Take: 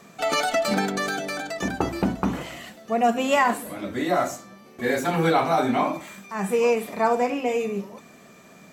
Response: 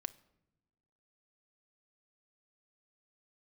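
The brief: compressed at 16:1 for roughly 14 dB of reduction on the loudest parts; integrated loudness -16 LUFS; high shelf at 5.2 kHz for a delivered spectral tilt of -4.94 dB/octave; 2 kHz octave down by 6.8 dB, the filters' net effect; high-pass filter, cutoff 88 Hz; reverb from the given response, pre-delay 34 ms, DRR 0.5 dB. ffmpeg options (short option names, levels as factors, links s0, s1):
-filter_complex "[0:a]highpass=88,equalizer=f=2000:t=o:g=-8,highshelf=f=5200:g=-5,acompressor=threshold=0.0282:ratio=16,asplit=2[s0][s1];[1:a]atrim=start_sample=2205,adelay=34[s2];[s1][s2]afir=irnorm=-1:irlink=0,volume=1.26[s3];[s0][s3]amix=inputs=2:normalize=0,volume=7.5"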